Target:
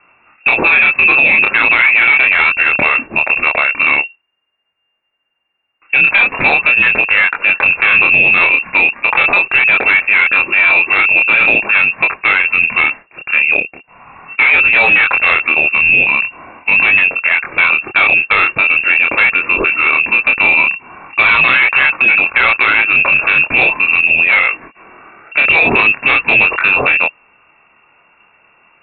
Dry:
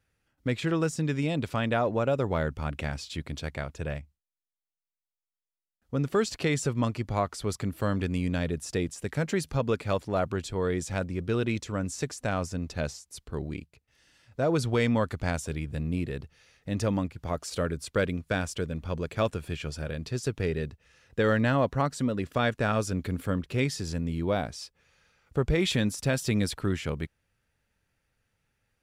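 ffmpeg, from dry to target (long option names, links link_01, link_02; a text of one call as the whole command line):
ffmpeg -i in.wav -af "lowshelf=frequency=310:gain=-6.5,lowpass=frequency=2400:width_type=q:width=0.5098,lowpass=frequency=2400:width_type=q:width=0.6013,lowpass=frequency=2400:width_type=q:width=0.9,lowpass=frequency=2400:width_type=q:width=2.563,afreqshift=-2800,aresample=8000,asoftclip=type=tanh:threshold=-28dB,aresample=44100,flanger=delay=22.5:depth=6.1:speed=0.41,alimiter=level_in=33.5dB:limit=-1dB:release=50:level=0:latency=1,volume=-1dB" out.wav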